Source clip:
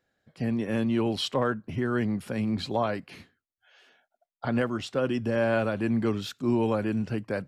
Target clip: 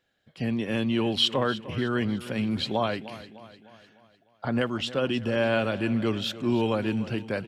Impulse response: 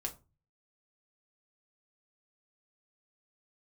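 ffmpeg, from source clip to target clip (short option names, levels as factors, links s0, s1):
-af "asetnsamples=n=441:p=0,asendcmd='3.1 equalizer g -2.5;4.61 equalizer g 9.5',equalizer=f=3100:w=1.7:g=9.5,aecho=1:1:302|604|906|1208|1510:0.158|0.0808|0.0412|0.021|0.0107"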